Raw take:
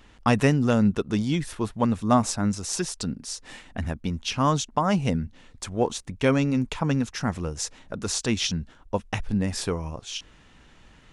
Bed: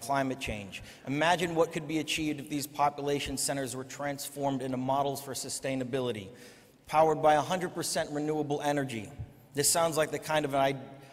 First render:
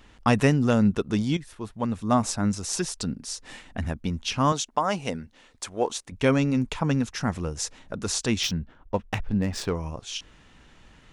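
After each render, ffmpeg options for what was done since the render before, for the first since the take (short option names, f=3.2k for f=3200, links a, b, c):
-filter_complex "[0:a]asettb=1/sr,asplit=3[a][b][c];[a]atrim=end=4.524[d];[b]atrim=start=4.52:end=6.12,asetpts=PTS-STARTPTS,afade=t=in:d=0.004:c=qsin,afade=t=out:st=1.596:d=0.004:c=qsin,bass=f=250:g=-13,treble=f=4k:g=1[e];[c]atrim=start=6.116[f];[d][e]acrossfade=d=0.004:c1=hsin:c2=qsin[g];[g][f]acrossfade=d=0.004:c1=qsin:c2=hsin,asettb=1/sr,asplit=3[h][i][j];[h]atrim=end=8.434[k];[i]atrim=start=8.43:end=9.75,asetpts=PTS-STARTPTS,afade=t=in:d=0.004:c=qsin,afade=t=out:st=1.316:d=0.004:c=qsin,adynamicsmooth=sensitivity=7.5:basefreq=2.6k[l];[j]atrim=start=9.746[m];[k][l]acrossfade=d=0.004:c1=hsin:c2=qsin[n];[n][m]acrossfade=d=0.004:c1=qsin:c2=hsin,asplit=2[o][p];[o]atrim=end=1.37,asetpts=PTS-STARTPTS,afade=t=out:st=1.366:d=0.004:c=hsin:silence=0.237137[q];[p]atrim=start=1.37,asetpts=PTS-STARTPTS,afade=t=in:d=1.07:silence=0.237137[r];[q][r]concat=n=2:v=0:a=1"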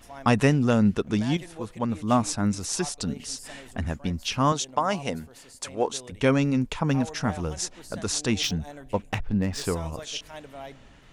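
-filter_complex "[1:a]volume=-13.5dB[a];[0:a][a]amix=inputs=2:normalize=0"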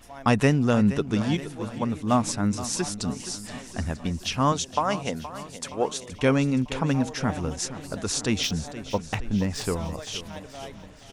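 -af "aecho=1:1:471|942|1413|1884|2355|2826:0.2|0.114|0.0648|0.037|0.0211|0.012"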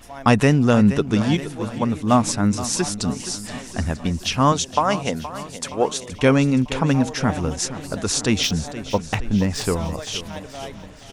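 -af "volume=5.5dB,alimiter=limit=-2dB:level=0:latency=1"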